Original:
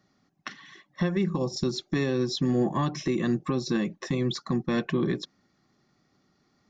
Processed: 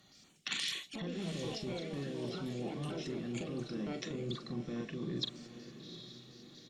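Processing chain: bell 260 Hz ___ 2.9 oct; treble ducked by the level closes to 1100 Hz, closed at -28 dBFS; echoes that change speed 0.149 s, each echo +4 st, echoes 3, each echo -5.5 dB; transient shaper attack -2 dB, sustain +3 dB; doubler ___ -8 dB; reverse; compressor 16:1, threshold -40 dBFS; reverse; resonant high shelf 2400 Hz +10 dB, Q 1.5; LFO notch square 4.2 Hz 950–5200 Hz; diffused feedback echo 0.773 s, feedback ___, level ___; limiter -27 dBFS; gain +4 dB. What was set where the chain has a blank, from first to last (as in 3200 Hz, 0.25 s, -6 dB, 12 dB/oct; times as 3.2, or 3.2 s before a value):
-4.5 dB, 42 ms, 49%, -12 dB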